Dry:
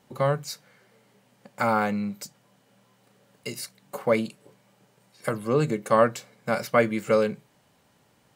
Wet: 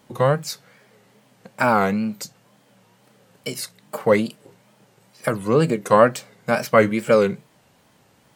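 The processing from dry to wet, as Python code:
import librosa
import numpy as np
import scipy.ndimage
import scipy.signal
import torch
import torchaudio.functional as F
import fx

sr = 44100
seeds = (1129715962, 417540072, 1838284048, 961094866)

y = fx.wow_flutter(x, sr, seeds[0], rate_hz=2.1, depth_cents=130.0)
y = y * 10.0 ** (5.5 / 20.0)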